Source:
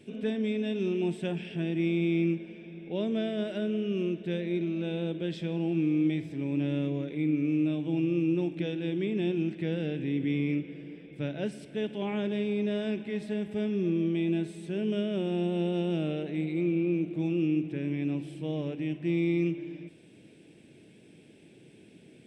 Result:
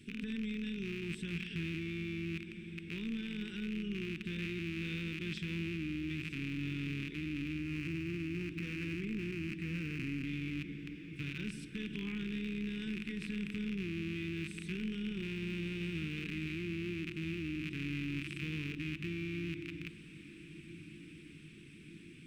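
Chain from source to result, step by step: rattling part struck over -41 dBFS, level -27 dBFS; 7.58–10.24 bell 3500 Hz -15 dB 0.22 oct; limiter -29.5 dBFS, peak gain reduction 11.5 dB; AM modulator 240 Hz, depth 30%; Butterworth band-stop 660 Hz, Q 0.56; diffused feedback echo 1.529 s, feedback 67%, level -15.5 dB; gain +2 dB

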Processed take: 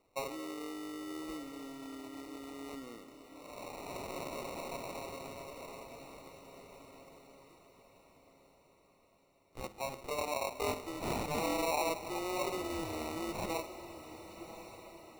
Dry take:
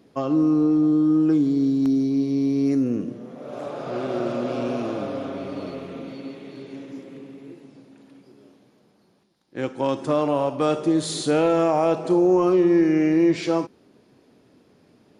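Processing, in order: HPF 960 Hz 12 dB/oct; sample-and-hold 27×; diffused feedback echo 1.15 s, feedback 46%, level -12 dB; gain -5.5 dB

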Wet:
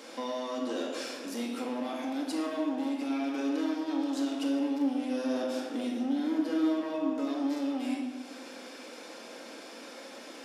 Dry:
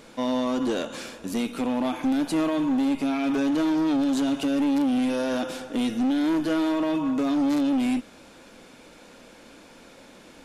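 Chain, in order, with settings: 4.49–7.1 low shelf 450 Hz +7.5 dB; compressor 2:1, threshold -43 dBFS, peak gain reduction 14.5 dB; HPF 280 Hz 24 dB/oct; bell 5200 Hz +7 dB 0.25 oct; shoebox room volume 1200 m³, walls mixed, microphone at 2.1 m

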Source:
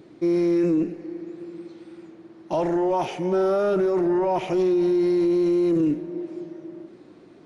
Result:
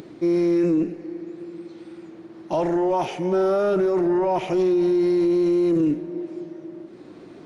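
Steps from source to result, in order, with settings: upward compressor, threshold -36 dBFS; gain +1 dB

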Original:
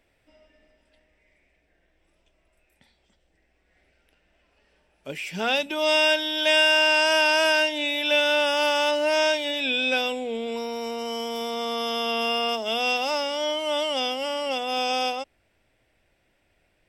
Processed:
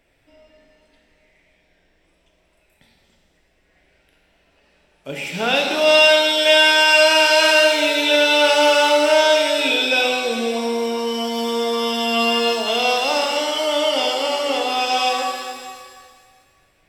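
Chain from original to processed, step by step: shimmer reverb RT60 1.8 s, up +7 st, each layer -8 dB, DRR 0.5 dB; gain +3.5 dB

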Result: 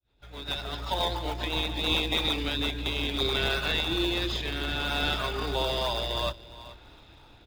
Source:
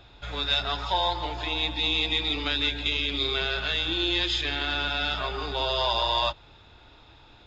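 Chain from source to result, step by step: opening faded in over 1.09 s; 3.54–4.35 notch 3200 Hz, Q 11; on a send: echo 0.43 s -20.5 dB; on the sum: rotary speaker horn 7.5 Hz, later 0.6 Hz, at 1.47; in parallel at -7 dB: decimation with a swept rate 23×, swing 100% 3 Hz

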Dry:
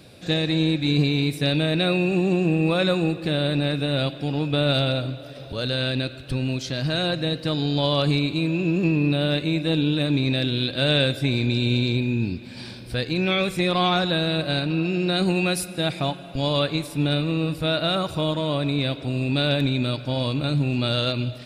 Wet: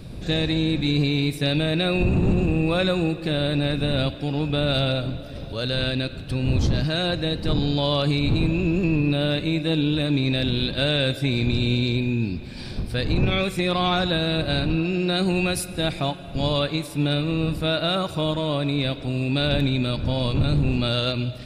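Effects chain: wind noise 150 Hz -27 dBFS; limiter -12 dBFS, peak gain reduction 9 dB

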